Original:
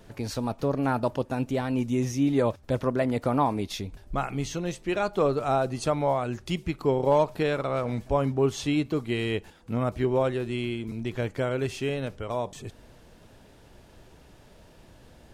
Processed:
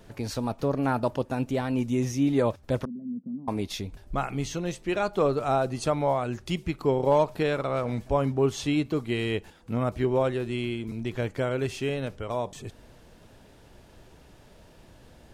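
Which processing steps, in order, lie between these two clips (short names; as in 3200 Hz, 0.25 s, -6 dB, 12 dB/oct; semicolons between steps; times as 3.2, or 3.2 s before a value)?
2.85–3.48 Butterworth band-pass 210 Hz, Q 3.4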